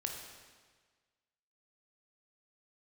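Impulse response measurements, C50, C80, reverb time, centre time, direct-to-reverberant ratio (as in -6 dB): 3.5 dB, 5.0 dB, 1.5 s, 53 ms, 1.5 dB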